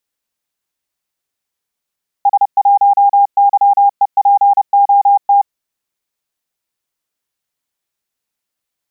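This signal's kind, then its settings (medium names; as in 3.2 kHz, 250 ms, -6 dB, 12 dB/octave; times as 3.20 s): Morse "S1YEPOT" 30 wpm 805 Hz -5.5 dBFS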